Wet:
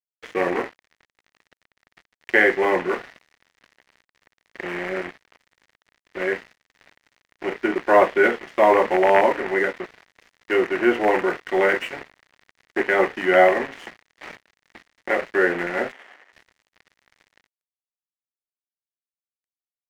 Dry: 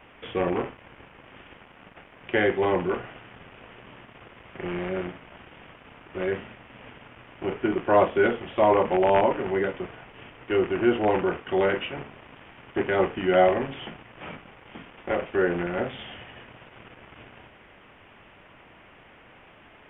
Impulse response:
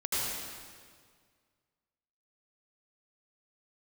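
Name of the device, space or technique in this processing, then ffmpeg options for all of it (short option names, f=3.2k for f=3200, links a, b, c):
pocket radio on a weak battery: -filter_complex "[0:a]highpass=270,lowpass=3.1k,aeval=exprs='sgn(val(0))*max(abs(val(0))-0.00841,0)':c=same,equalizer=f=1.9k:t=o:w=0.49:g=9.5,asettb=1/sr,asplit=3[a][b][c];[a]atrim=end=15.924[d];[b]atrim=start=15.92:end=16.33,asetpts=PTS-STARTPTS,afade=t=in:d=0.004:c=qsin,afade=t=out:st=0.406:d=0.004:c=qsin,acrossover=split=310 2400:gain=0.0708 1 0.2[e][f][g];[e][f][g]amix=inputs=3:normalize=0[h];[c]atrim=start=16.326[i];[d][h]acrossfade=d=0.004:c1=hsin:c2=qsin[j];[j][i]acrossfade=d=0.004:c1=qsin:c2=hsin,volume=4.5dB"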